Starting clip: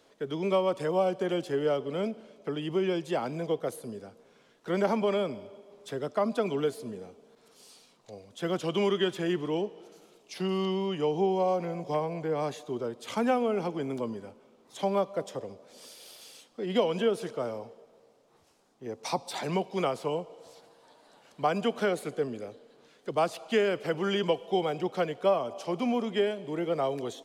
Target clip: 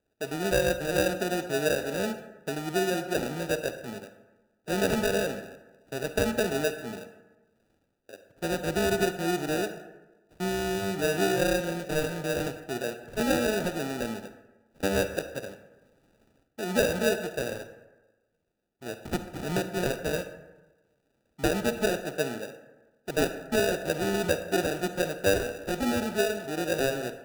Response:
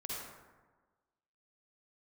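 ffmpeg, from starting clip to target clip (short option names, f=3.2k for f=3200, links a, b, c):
-filter_complex "[0:a]afwtdn=0.0178,acrusher=samples=41:mix=1:aa=0.000001,asplit=2[a][b];[1:a]atrim=start_sample=2205,asetrate=52920,aresample=44100[c];[b][c]afir=irnorm=-1:irlink=0,volume=-6dB[d];[a][d]amix=inputs=2:normalize=0,volume=-1dB"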